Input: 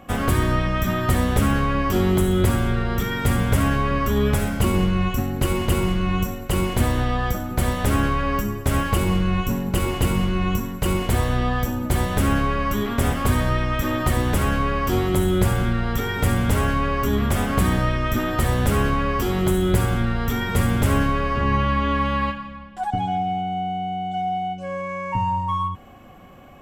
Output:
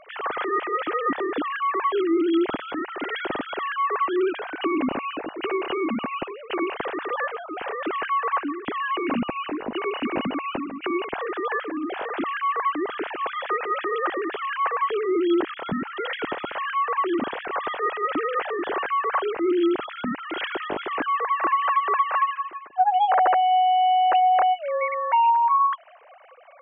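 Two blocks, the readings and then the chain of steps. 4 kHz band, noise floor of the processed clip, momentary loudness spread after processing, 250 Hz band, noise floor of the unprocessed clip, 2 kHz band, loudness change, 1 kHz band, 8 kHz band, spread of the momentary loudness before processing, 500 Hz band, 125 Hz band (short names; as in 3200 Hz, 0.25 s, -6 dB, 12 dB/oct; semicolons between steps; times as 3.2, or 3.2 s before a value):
-3.5 dB, -41 dBFS, 11 LU, -5.0 dB, -35 dBFS, -1.5 dB, -2.5 dB, +3.5 dB, under -40 dB, 5 LU, -1.0 dB, -28.0 dB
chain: sine-wave speech; compressor, threshold -17 dBFS, peak gain reduction 10.5 dB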